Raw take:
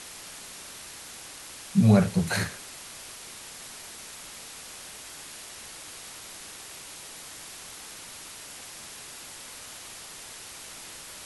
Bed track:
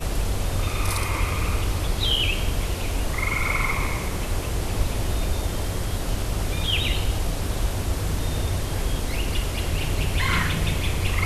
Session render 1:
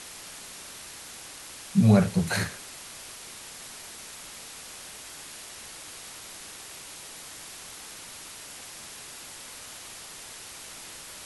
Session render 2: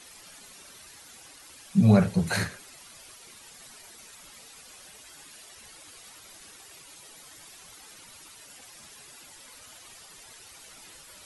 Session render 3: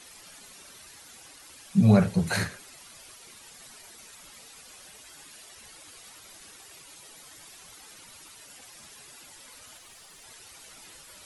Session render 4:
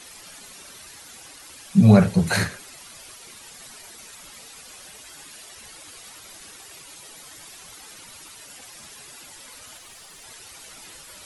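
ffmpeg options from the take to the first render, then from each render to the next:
-af anull
-af "afftdn=nr=11:nf=-44"
-filter_complex "[0:a]asettb=1/sr,asplit=3[a][b][c];[a]atrim=end=9.774[d];[b]atrim=start=9.77:end=10.24,asetpts=PTS-STARTPTS,afade=t=in:d=0.004:c=qsin,afade=t=out:st=0.466:d=0.004:c=qsin,aeval=exprs='(tanh(126*val(0)+0.3)-tanh(0.3))/126':c=same[e];[c]atrim=start=10.236[f];[d][e]acrossfade=d=0.004:c1=hsin:c2=qsin[g];[g][f]acrossfade=d=0.004:c1=qsin:c2=hsin"
-af "volume=5.5dB"

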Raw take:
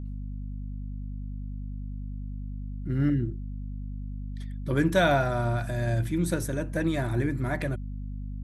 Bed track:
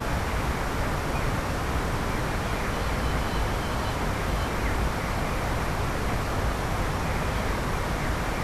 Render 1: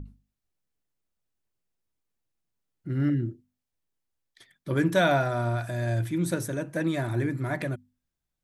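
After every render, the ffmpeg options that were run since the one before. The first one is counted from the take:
-af "bandreject=f=50:t=h:w=6,bandreject=f=100:t=h:w=6,bandreject=f=150:t=h:w=6,bandreject=f=200:t=h:w=6,bandreject=f=250:t=h:w=6"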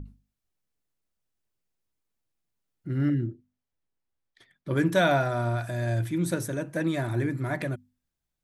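-filter_complex "[0:a]asettb=1/sr,asplit=3[a][b][c];[a]atrim=end=3.264[d];[b]atrim=start=3.26:end=4.71,asetpts=PTS-STARTPTS,afade=t=in:d=0.004:c=qsin,afade=t=out:st=1.446:d=0.004:c=qsin,highshelf=f=4.3k:g=-11.5[e];[c]atrim=start=4.706[f];[d][e]acrossfade=d=0.004:c1=hsin:c2=qsin[g];[g][f]acrossfade=d=0.004:c1=qsin:c2=hsin"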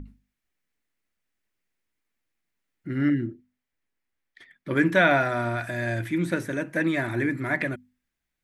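-filter_complex "[0:a]equalizer=f=125:t=o:w=1:g=-5,equalizer=f=250:t=o:w=1:g=5,equalizer=f=2k:t=o:w=1:g=11,acrossover=split=3700[a][b];[b]acompressor=threshold=-44dB:ratio=4:attack=1:release=60[c];[a][c]amix=inputs=2:normalize=0"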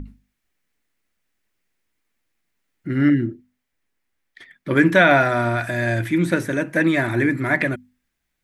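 -af "volume=6.5dB,alimiter=limit=-3dB:level=0:latency=1"

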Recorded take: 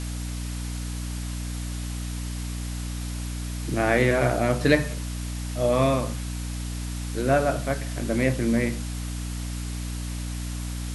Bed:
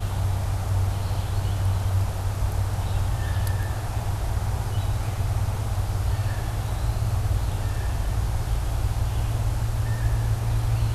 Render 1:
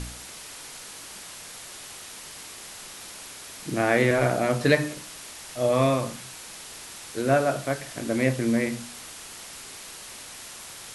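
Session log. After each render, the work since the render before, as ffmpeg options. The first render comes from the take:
-af "bandreject=f=60:t=h:w=4,bandreject=f=120:t=h:w=4,bandreject=f=180:t=h:w=4,bandreject=f=240:t=h:w=4,bandreject=f=300:t=h:w=4"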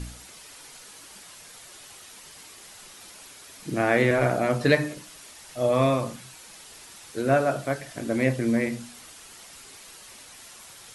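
-af "afftdn=nr=7:nf=-42"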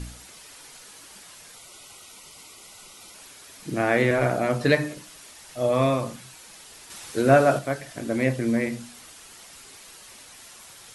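-filter_complex "[0:a]asettb=1/sr,asplit=3[a][b][c];[a]atrim=end=1.554[d];[b]atrim=start=1.55:end=3.15,asetpts=PTS-STARTPTS,afade=t=in:d=0.004:c=qsin,afade=t=out:st=1.596:d=0.004:c=qsin,asuperstop=centerf=1700:order=20:qfactor=4.9[e];[c]atrim=start=3.146[f];[d][e]acrossfade=d=0.004:c1=hsin:c2=qsin[g];[g][f]acrossfade=d=0.004:c1=qsin:c2=hsin,asettb=1/sr,asplit=3[h][i][j];[h]atrim=end=6.904[k];[i]atrim=start=6.9:end=7.59,asetpts=PTS-STARTPTS,afade=t=in:d=0.004:c=qsin,afade=t=out:st=0.686:d=0.004:c=qsin,acontrast=31[l];[j]atrim=start=7.586[m];[k][l]acrossfade=d=0.004:c1=hsin:c2=qsin[n];[n][m]acrossfade=d=0.004:c1=qsin:c2=hsin"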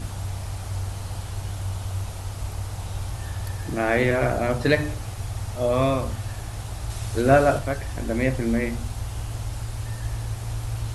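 -filter_complex "[1:a]volume=-6dB[a];[0:a][a]amix=inputs=2:normalize=0"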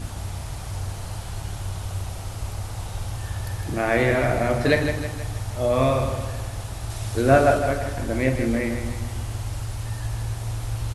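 -filter_complex "[0:a]asplit=2[a][b];[b]adelay=46,volume=-11dB[c];[a][c]amix=inputs=2:normalize=0,aecho=1:1:159|318|477|636|795|954:0.398|0.191|0.0917|0.044|0.0211|0.0101"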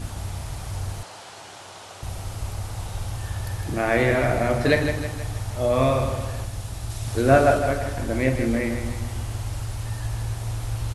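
-filter_complex "[0:a]asettb=1/sr,asplit=3[a][b][c];[a]atrim=end=1.034[d];[b]atrim=start=1.03:end=2.03,asetpts=PTS-STARTPTS,afade=t=in:d=0.004:c=qsin,afade=t=out:st=0.996:d=0.004:c=qsin,highpass=390,lowpass=7.6k[e];[c]atrim=start=2.026[f];[d][e]acrossfade=d=0.004:c1=hsin:c2=qsin[g];[g][f]acrossfade=d=0.004:c1=qsin:c2=hsin,asettb=1/sr,asplit=3[h][i][j];[h]atrim=end=6.444[k];[i]atrim=start=6.44:end=7.08,asetpts=PTS-STARTPTS,afade=t=in:d=0.004:c=qsin,afade=t=out:st=0.636:d=0.004:c=qsin,acrossover=split=300|3000[l][m][n];[m]acompressor=threshold=-42dB:ratio=6:attack=3.2:release=140:knee=2.83:detection=peak[o];[l][o][n]amix=inputs=3:normalize=0[p];[j]atrim=start=7.076[q];[k][p]acrossfade=d=0.004:c1=hsin:c2=qsin[r];[r][q]acrossfade=d=0.004:c1=qsin:c2=hsin"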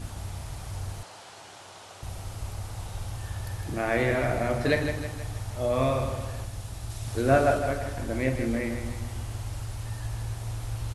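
-af "volume=-5dB"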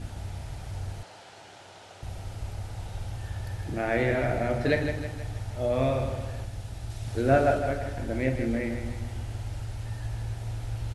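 -af "lowpass=f=3.8k:p=1,equalizer=f=1.1k:w=5.2:g=-9"

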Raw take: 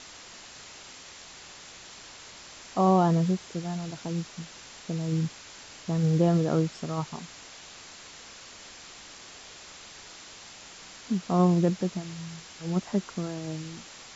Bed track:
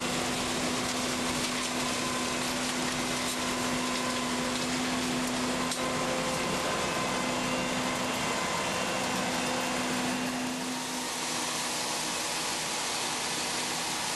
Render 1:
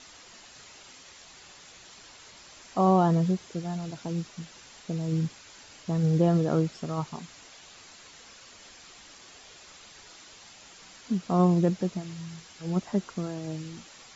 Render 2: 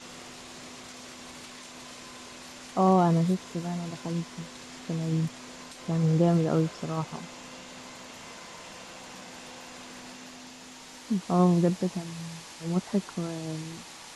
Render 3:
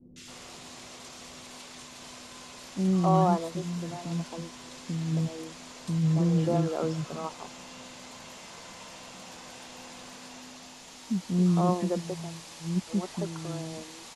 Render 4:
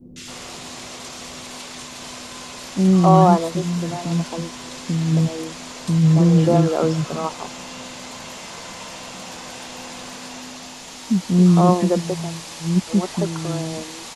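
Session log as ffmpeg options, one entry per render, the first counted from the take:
-af "afftdn=nr=6:nf=-47"
-filter_complex "[1:a]volume=-15.5dB[a];[0:a][a]amix=inputs=2:normalize=0"
-filter_complex "[0:a]acrossover=split=340|1700[a][b][c];[c]adelay=160[d];[b]adelay=270[e];[a][e][d]amix=inputs=3:normalize=0"
-af "volume=10.5dB,alimiter=limit=-1dB:level=0:latency=1"

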